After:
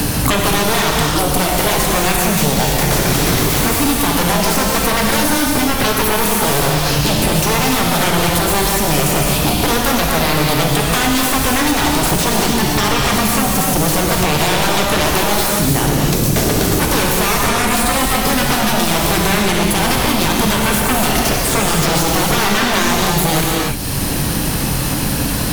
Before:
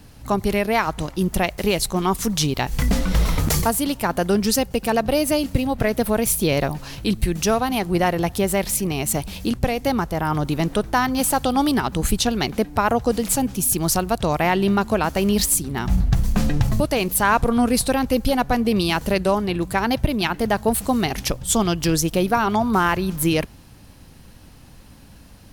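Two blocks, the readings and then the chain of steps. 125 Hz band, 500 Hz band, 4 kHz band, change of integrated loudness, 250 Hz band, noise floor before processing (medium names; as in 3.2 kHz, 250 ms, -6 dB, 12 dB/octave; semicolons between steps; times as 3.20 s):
+6.5 dB, +4.0 dB, +11.0 dB, +6.5 dB, +4.0 dB, -45 dBFS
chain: treble shelf 7.8 kHz +9.5 dB; peak limiter -9.5 dBFS, peak gain reduction 9 dB; sine folder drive 13 dB, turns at -9.5 dBFS; gated-style reverb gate 330 ms flat, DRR -2 dB; three bands compressed up and down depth 100%; trim -6 dB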